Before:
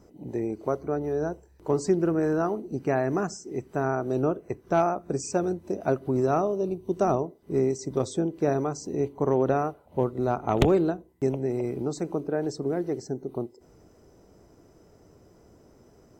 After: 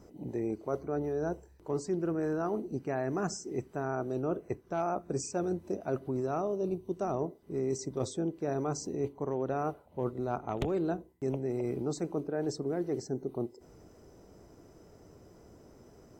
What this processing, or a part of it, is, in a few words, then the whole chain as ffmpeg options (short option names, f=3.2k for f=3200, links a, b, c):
compression on the reversed sound: -af "areverse,acompressor=threshold=-29dB:ratio=6,areverse"